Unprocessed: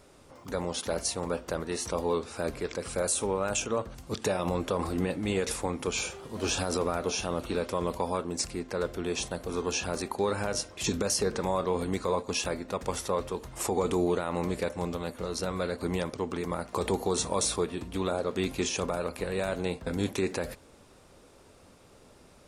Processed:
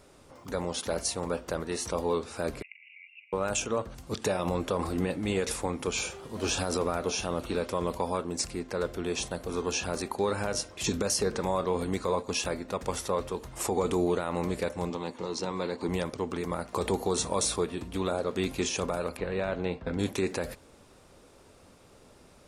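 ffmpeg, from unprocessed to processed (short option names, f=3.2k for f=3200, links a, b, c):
-filter_complex "[0:a]asettb=1/sr,asplit=3[a][b][c];[a]atrim=end=2.624[d];[b]atrim=start=2.62:end=3.33,asetpts=PTS-STARTPTS,afade=t=in:d=0.004:c=qsin,afade=t=out:st=0.706:d=0.004:c=qsin,asuperpass=centerf=2400:order=20:qfactor=2.7[e];[c]atrim=start=3.326[f];[d][e]acrossfade=d=0.004:c1=hsin:c2=qsin[g];[g][f]acrossfade=d=0.004:c1=qsin:c2=hsin,asettb=1/sr,asplit=3[h][i][j];[h]atrim=end=14.904[k];[i]atrim=start=14.9:end=15.89,asetpts=PTS-STARTPTS,afade=t=in:d=0.004:c=qsin,afade=t=out:st=0.986:d=0.004:c=qsin,highpass=140,equalizer=f=340:t=q:w=4:g=3,equalizer=f=620:t=q:w=4:g=-6,equalizer=f=920:t=q:w=4:g=8,equalizer=f=1.4k:t=q:w=4:g=-7,lowpass=f=7.6k:w=0.5412,lowpass=f=7.6k:w=1.3066[l];[j]atrim=start=15.886[m];[k][l]acrossfade=d=0.004:c1=hsin:c2=qsin[n];[n][m]acrossfade=d=0.004:c1=qsin:c2=hsin,asettb=1/sr,asplit=3[o][p][q];[o]atrim=end=19.174[r];[p]atrim=start=19.17:end=19.99,asetpts=PTS-STARTPTS,afade=t=in:d=0.004:c=qsin,afade=t=out:st=0.816:d=0.004:c=qsin,lowpass=3.3k[s];[q]atrim=start=19.986[t];[r][s]acrossfade=d=0.004:c1=hsin:c2=qsin[u];[u][t]acrossfade=d=0.004:c1=qsin:c2=hsin"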